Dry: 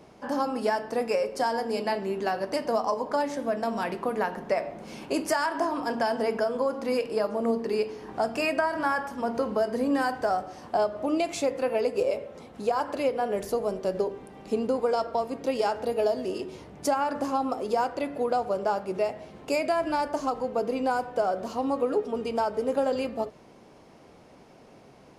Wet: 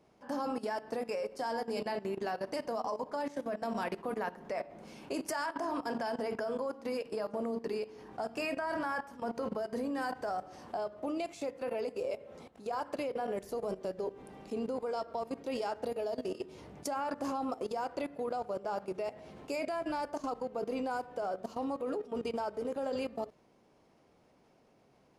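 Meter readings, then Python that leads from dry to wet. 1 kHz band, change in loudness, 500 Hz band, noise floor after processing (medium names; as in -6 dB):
-9.0 dB, -9.0 dB, -9.0 dB, -66 dBFS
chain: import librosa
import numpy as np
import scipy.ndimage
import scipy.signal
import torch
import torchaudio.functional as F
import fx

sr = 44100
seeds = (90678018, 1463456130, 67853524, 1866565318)

y = fx.level_steps(x, sr, step_db=16)
y = y * librosa.db_to_amplitude(-2.5)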